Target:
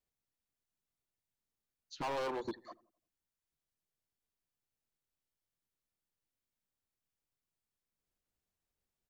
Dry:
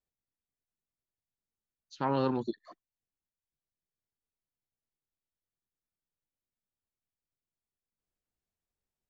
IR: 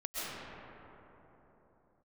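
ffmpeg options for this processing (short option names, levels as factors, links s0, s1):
-filter_complex "[0:a]asettb=1/sr,asplit=3[s0][s1][s2];[s0]atrim=end=2.024[s3];[s1]atrim=start=2.02:end=2.45,asetpts=PTS-STARTPTS,afade=t=in:d=0.004:c=qsin,afade=t=out:st=0.426:d=0.004:c=qsin,highpass=f=390:w=0.5412,highpass=f=390:w=1.3066[s4];[s2]atrim=start=2.446[s5];[s3][s4]acrossfade=d=0.004:c1=hsin:c2=qsin[s6];[s6][s5]acrossfade=d=0.004:c1=qsin:c2=hsin,asoftclip=type=hard:threshold=0.0178,asplit=2[s7][s8];[s8]adelay=86,lowpass=f=830:p=1,volume=0.112,asplit=2[s9][s10];[s10]adelay=86,lowpass=f=830:p=1,volume=0.53,asplit=2[s11][s12];[s12]adelay=86,lowpass=f=830:p=1,volume=0.53,asplit=2[s13][s14];[s14]adelay=86,lowpass=f=830:p=1,volume=0.53[s15];[s7][s9][s11][s13][s15]amix=inputs=5:normalize=0,volume=1.12"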